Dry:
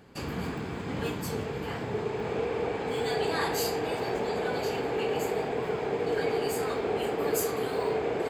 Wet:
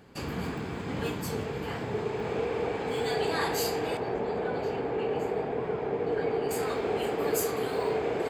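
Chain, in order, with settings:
0:03.97–0:06.51: low-pass filter 1,400 Hz 6 dB per octave

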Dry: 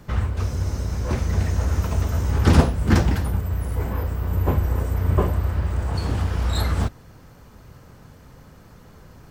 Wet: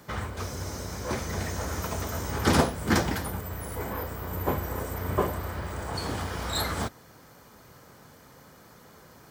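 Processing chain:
high-pass filter 360 Hz 6 dB per octave
high-shelf EQ 8,100 Hz +5.5 dB
notch filter 2,700 Hz, Q 12

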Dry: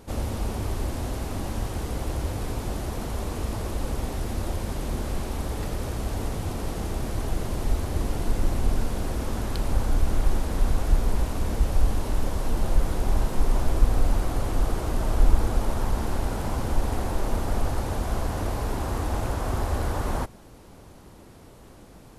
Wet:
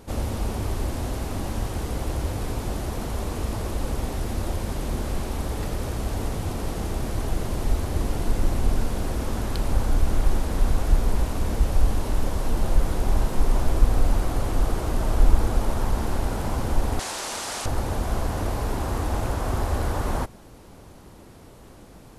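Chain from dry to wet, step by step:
0:16.99–0:17.66: meter weighting curve ITU-R 468
level +1.5 dB

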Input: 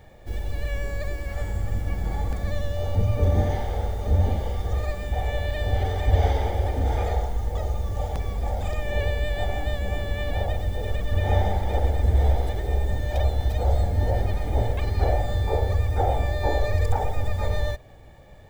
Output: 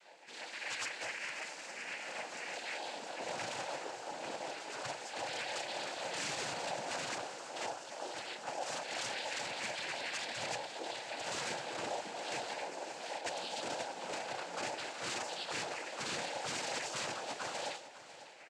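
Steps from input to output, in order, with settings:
high-pass filter 310 Hz 24 dB per octave
tilt shelving filter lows −8.5 dB, about 740 Hz
comb filter 3.5 ms, depth 48%
0:12.99–0:13.53: compressor whose output falls as the input rises −31 dBFS, ratio −0.5
resonators tuned to a chord G#3 minor, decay 0.33 s
wrap-around overflow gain 42 dB
cochlear-implant simulation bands 8
repeating echo 550 ms, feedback 45%, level −15 dB
on a send at −21 dB: convolution reverb RT60 0.30 s, pre-delay 3 ms
on the sum: level +10 dB

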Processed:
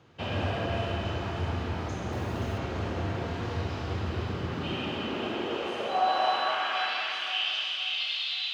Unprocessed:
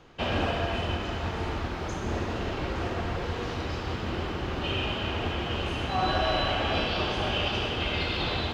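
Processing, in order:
high-pass filter sweep 100 Hz → 3,200 Hz, 0:04.18–0:07.50
on a send: delay that swaps between a low-pass and a high-pass 263 ms, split 1,700 Hz, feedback 60%, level −3 dB
on the sum: four-comb reverb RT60 1.5 s, combs from 28 ms, DRR 3.5 dB
0:02.11–0:02.57: background noise pink −51 dBFS
level −6 dB

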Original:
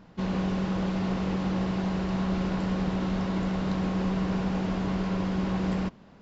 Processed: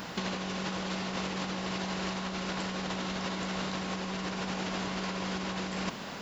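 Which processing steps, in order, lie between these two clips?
spectral tilt +3.5 dB per octave
in parallel at −2.5 dB: brickwall limiter −30 dBFS, peak gain reduction 9.5 dB
on the sum: compressor whose output falls as the input rises −36 dBFS, ratio −0.5
level +4 dB

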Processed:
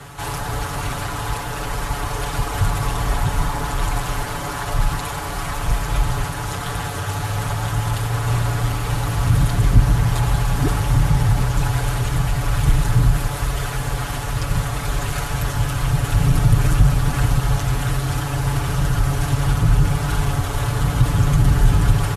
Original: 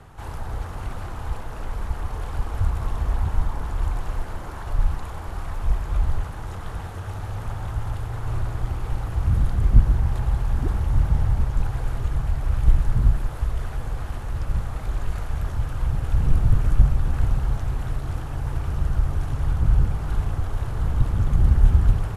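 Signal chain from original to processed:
high-pass filter 48 Hz
high-shelf EQ 2,100 Hz +10.5 dB
comb filter 7 ms, depth 99%
in parallel at 0 dB: brickwall limiter −14 dBFS, peak gain reduction 9.5 dB

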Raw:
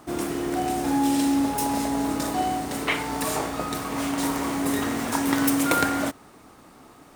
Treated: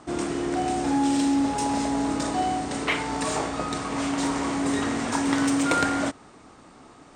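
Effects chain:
Butterworth low-pass 8,900 Hz 72 dB per octave
in parallel at −6.5 dB: hard clipping −21.5 dBFS, distortion −13 dB
on the sum: level −3 dB

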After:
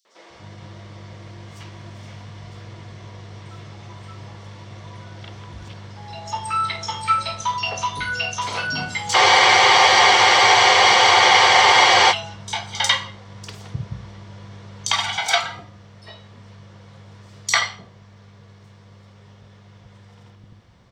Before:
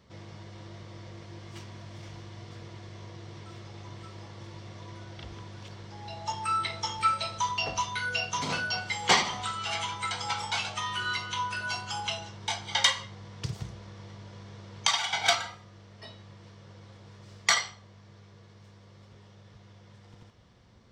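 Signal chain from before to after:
three-band delay without the direct sound highs, mids, lows 50/300 ms, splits 360/5,000 Hz
frozen spectrum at 0:09.18, 2.94 s
level +6.5 dB

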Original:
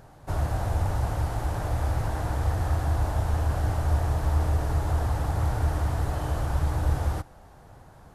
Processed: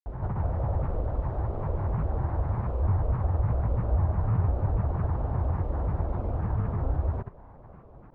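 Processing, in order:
backwards echo 981 ms −8.5 dB
granular cloud, pitch spread up and down by 7 semitones
in parallel at −1 dB: downward compressor, threshold −35 dBFS, peak gain reduction 15 dB
on the sum: low-pass filter 1,000 Hz 12 dB per octave
level −2.5 dB

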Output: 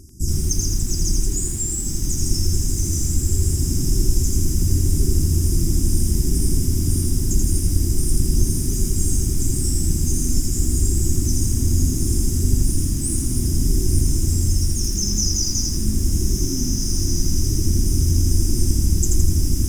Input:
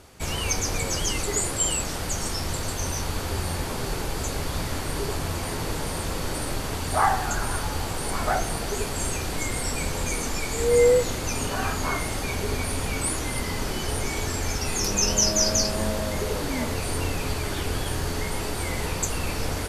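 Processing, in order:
linear-phase brick-wall band-stop 390–4,800 Hz
feedback delay with all-pass diffusion 1,574 ms, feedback 45%, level −7 dB
speech leveller within 4 dB 0.5 s
low-shelf EQ 110 Hz +7.5 dB
feedback echo at a low word length 83 ms, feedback 55%, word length 7 bits, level −3 dB
level +2 dB

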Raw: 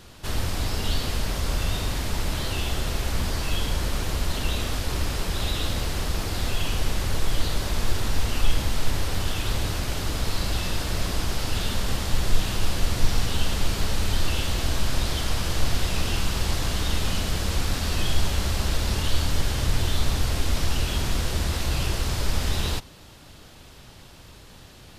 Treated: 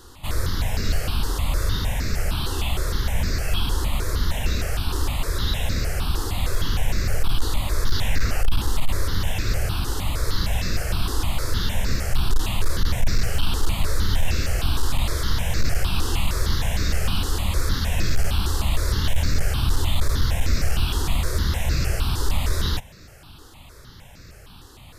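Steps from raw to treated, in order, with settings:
0:07.86–0:08.40: parametric band 6,600 Hz → 770 Hz +7 dB 0.76 octaves
gain into a clipping stage and back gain 15 dB
step-sequenced phaser 6.5 Hz 630–3,100 Hz
level +4 dB

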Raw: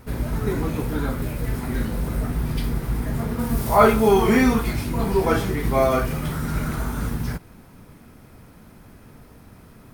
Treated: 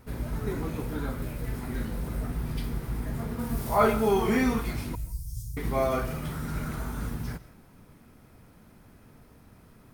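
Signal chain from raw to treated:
0:04.95–0:05.57: inverse Chebyshev band-stop filter 270–2,600 Hz, stop band 50 dB
on a send: convolution reverb RT60 0.40 s, pre-delay 90 ms, DRR 16 dB
on the sum: level −7.5 dB

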